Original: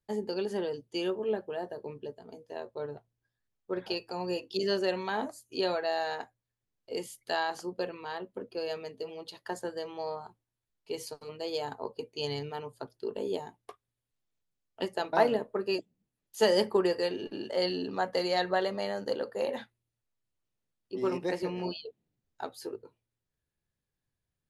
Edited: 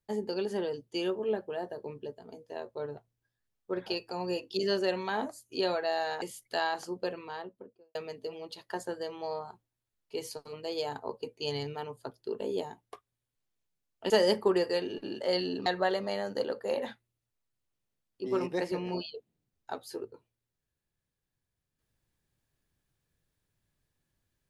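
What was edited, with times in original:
6.22–6.98 cut
7.91–8.71 studio fade out
14.86–16.39 cut
17.95–18.37 cut

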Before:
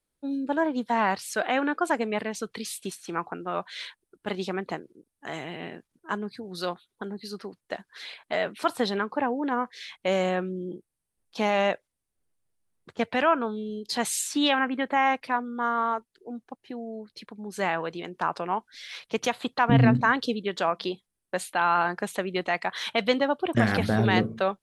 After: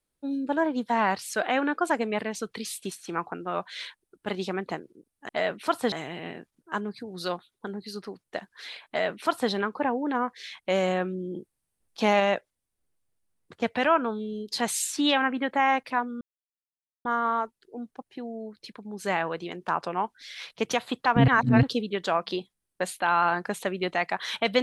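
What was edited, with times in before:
8.25–8.88 copy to 5.29
10.72–11.57 gain +3 dB
15.58 insert silence 0.84 s
19.81–20.16 reverse

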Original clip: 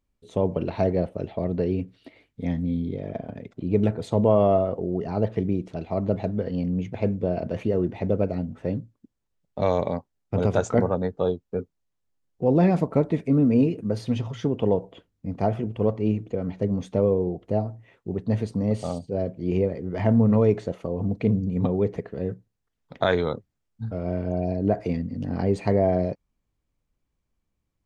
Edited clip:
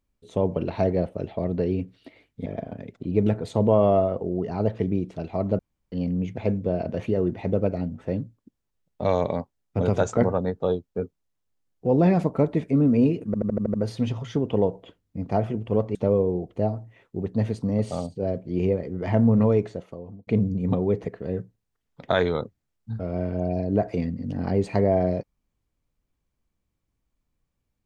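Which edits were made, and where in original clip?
2.46–3.03 cut
6.16–6.49 room tone
13.83 stutter 0.08 s, 7 plays
16.04–16.87 cut
20.35–21.19 fade out

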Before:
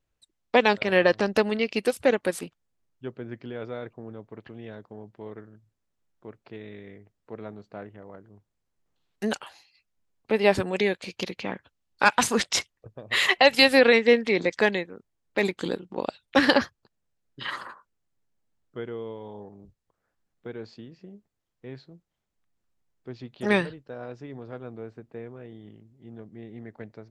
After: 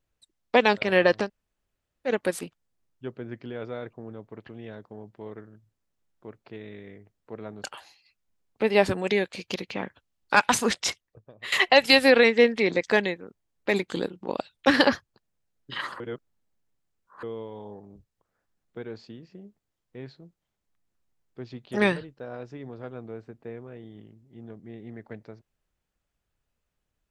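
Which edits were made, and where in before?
1.25–2.09 room tone, crossfade 0.10 s
7.64–9.33 cut
12.29–13.21 fade out linear, to -14.5 dB
17.69–18.92 reverse

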